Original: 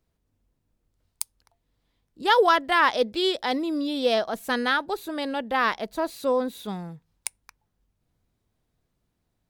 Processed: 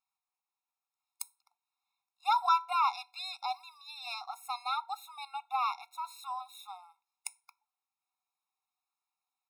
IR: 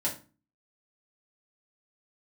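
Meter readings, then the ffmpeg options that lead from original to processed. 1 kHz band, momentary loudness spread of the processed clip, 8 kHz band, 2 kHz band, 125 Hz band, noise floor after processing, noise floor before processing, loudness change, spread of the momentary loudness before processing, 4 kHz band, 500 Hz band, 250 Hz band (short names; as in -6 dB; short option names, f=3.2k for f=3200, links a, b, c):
-5.5 dB, 17 LU, -9.5 dB, -18.5 dB, under -40 dB, under -85 dBFS, -76 dBFS, -10.0 dB, 16 LU, -11.5 dB, -30.5 dB, under -40 dB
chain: -filter_complex "[0:a]asplit=2[a][b];[b]aecho=1:1:5.2:0.71[c];[1:a]atrim=start_sample=2205[d];[c][d]afir=irnorm=-1:irlink=0,volume=-21dB[e];[a][e]amix=inputs=2:normalize=0,afftfilt=real='re*eq(mod(floor(b*sr/1024/710),2),1)':imag='im*eq(mod(floor(b*sr/1024/710),2),1)':win_size=1024:overlap=0.75,volume=-6.5dB"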